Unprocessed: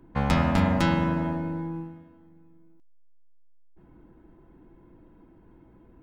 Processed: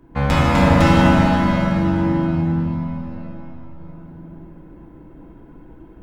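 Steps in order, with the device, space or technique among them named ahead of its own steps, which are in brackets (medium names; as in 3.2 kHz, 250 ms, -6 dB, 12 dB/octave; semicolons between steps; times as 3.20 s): cathedral (reverberation RT60 5.0 s, pre-delay 3 ms, DRR -7.5 dB); trim +3 dB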